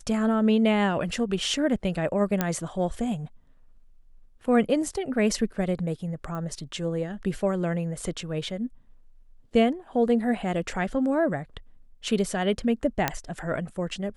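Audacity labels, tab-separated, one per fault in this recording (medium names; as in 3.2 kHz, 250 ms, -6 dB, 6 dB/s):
2.410000	2.410000	pop -9 dBFS
6.350000	6.350000	pop -24 dBFS
13.080000	13.080000	pop -7 dBFS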